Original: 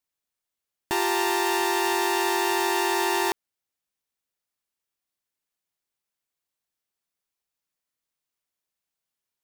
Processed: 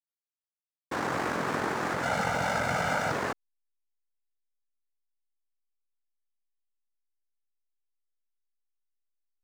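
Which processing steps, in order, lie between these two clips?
adaptive Wiener filter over 41 samples
cochlear-implant simulation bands 3
0:02.03–0:03.12: comb filter 1.4 ms, depth 88%
slack as between gear wheels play −28 dBFS
parametric band 800 Hz +6 dB 2.9 octaves
level −8 dB

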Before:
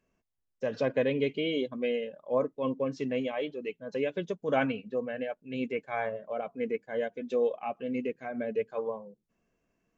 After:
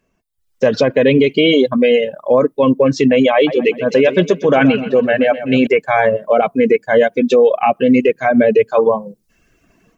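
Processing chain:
reverb reduction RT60 0.86 s
automatic gain control gain up to 15 dB
boost into a limiter +12.5 dB
0:03.34–0:05.67: feedback echo with a swinging delay time 126 ms, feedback 50%, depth 70 cents, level −13 dB
level −2.5 dB

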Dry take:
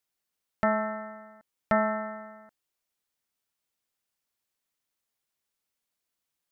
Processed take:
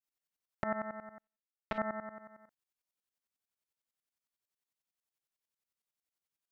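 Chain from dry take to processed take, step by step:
0:01.18–0:01.78: power curve on the samples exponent 2
shaped tremolo saw up 11 Hz, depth 90%
level −5 dB

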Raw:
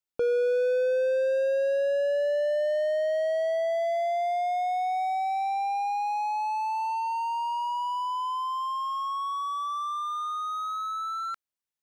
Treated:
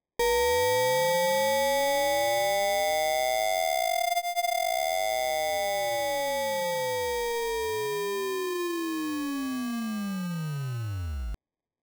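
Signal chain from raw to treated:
sample-rate reduction 1,400 Hz, jitter 0%

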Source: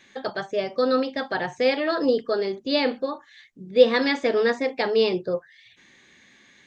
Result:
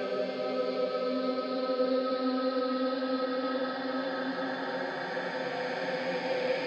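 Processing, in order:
extreme stretch with random phases 6.7×, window 1.00 s, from 0:00.58
level −7 dB

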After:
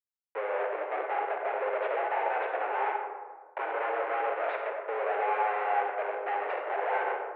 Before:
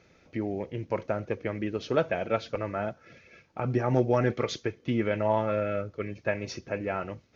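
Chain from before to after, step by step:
comparator with hysteresis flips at −39 dBFS
convolution reverb RT60 1.5 s, pre-delay 15 ms, DRR 1.5 dB
single-sideband voice off tune +200 Hz 230–2,200 Hz

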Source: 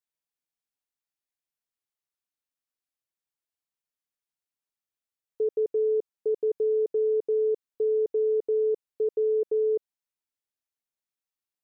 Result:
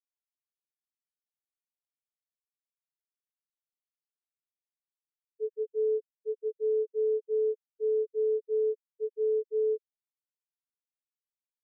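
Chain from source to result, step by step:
every bin expanded away from the loudest bin 4 to 1
level −2.5 dB

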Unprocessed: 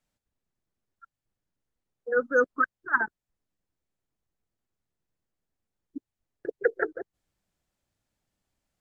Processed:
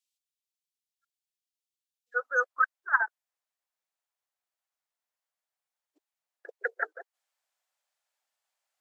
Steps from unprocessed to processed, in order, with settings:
inverse Chebyshev high-pass filter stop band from 1,100 Hz, stop band 50 dB, from 0:02.14 stop band from 250 Hz

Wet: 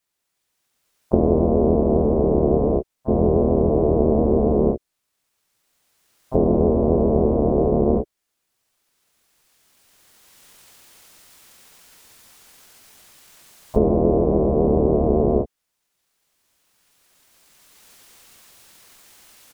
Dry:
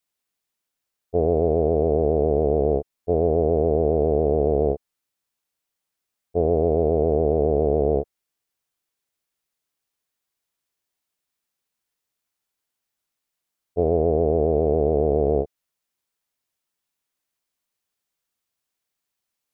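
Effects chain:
camcorder AGC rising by 12 dB per second
pitch-shifted copies added −12 semitones −2 dB, −3 semitones −3 dB, +7 semitones −12 dB
level −1 dB

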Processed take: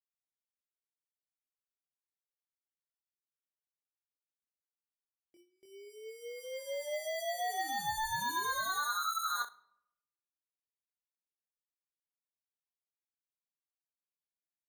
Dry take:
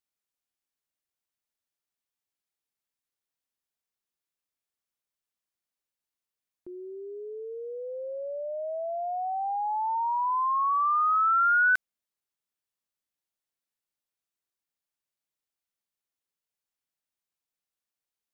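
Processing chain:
high-pass filter 640 Hz 24 dB per octave
noise gate with hold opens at −53 dBFS
low-pass filter 2,500 Hz 6 dB per octave
in parallel at +2 dB: downward compressor, threshold −35 dBFS, peak gain reduction 12.5 dB
on the sum: decimation without filtering 16×
soft clipping −27 dBFS, distortion −11 dB
tempo change 1.3×
on a send: ambience of single reflections 24 ms −3 dB, 61 ms −13 dB
on the sum: rectangular room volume 2,400 cubic metres, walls furnished, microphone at 0.44 metres
wrong playback speed 25 fps video run at 24 fps
level −8 dB

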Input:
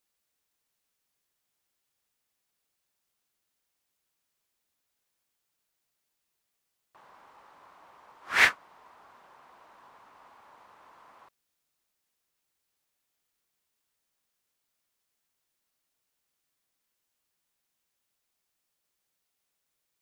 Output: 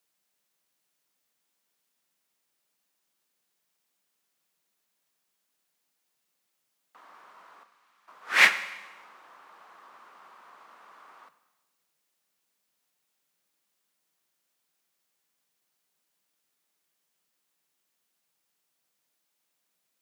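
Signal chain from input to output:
0:07.63–0:08.08: guitar amp tone stack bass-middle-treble 5-5-5
frequency shifter +130 Hz
four-comb reverb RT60 1.1 s, combs from 32 ms, DRR 12 dB
level +2.5 dB

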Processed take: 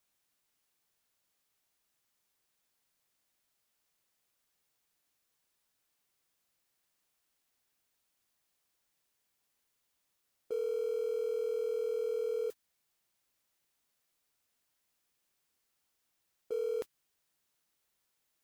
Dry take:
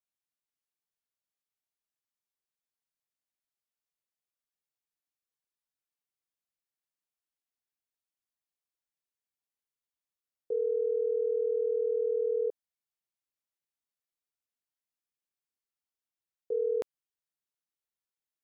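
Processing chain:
converter with a step at zero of −42.5 dBFS
dynamic equaliser 650 Hz, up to −6 dB, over −42 dBFS, Q 1.4
downward compressor 4 to 1, threshold −31 dBFS, peak gain reduction 3 dB
noise gate −36 dBFS, range −28 dB

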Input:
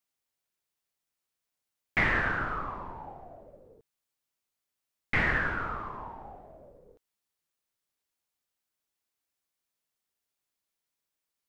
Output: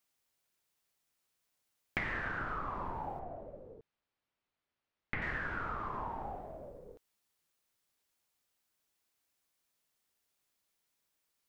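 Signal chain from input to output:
downward compressor 8 to 1, threshold −39 dBFS, peak gain reduction 17 dB
0:03.19–0:05.22: high-frequency loss of the air 260 metres
level +4.5 dB

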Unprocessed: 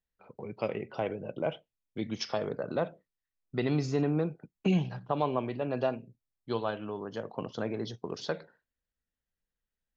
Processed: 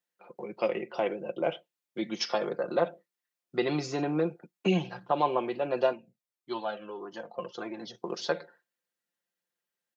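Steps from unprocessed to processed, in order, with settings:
high-pass filter 290 Hz 12 dB per octave
comb filter 5.7 ms, depth 62%
0:05.93–0:07.95: flanger whose copies keep moving one way falling 1.7 Hz
level +3 dB

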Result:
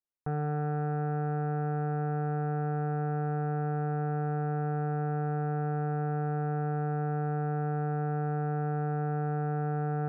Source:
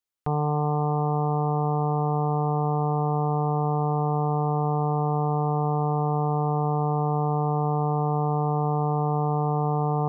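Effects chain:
phase distortion by the signal itself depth 0.2 ms
low-pass filter 1,100 Hz 12 dB per octave
level −5.5 dB

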